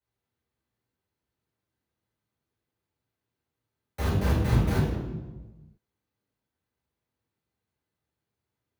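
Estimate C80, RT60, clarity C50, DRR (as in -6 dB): 3.5 dB, 1.2 s, 1.0 dB, -8.0 dB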